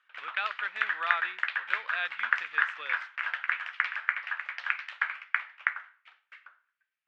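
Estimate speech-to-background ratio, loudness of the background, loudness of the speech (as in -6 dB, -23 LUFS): -4.5 dB, -31.5 LUFS, -36.0 LUFS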